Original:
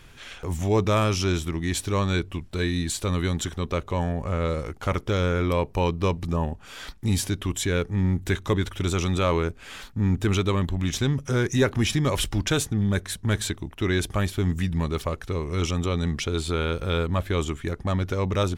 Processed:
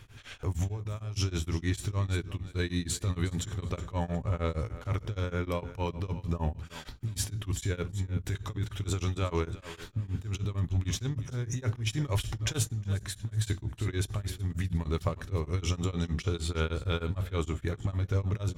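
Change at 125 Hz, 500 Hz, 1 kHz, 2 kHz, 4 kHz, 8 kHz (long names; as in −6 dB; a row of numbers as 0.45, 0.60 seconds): −5.0, −10.5, −10.5, −10.0, −8.5, −6.0 decibels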